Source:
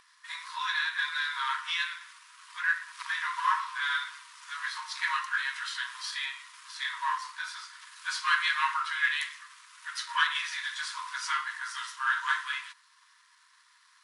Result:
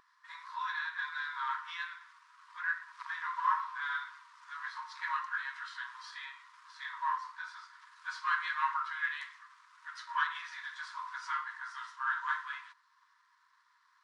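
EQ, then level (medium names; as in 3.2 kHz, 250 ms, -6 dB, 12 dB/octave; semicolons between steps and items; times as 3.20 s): tape spacing loss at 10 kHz 26 dB; peaking EQ 2.7 kHz -9 dB 1.2 oct; +1.5 dB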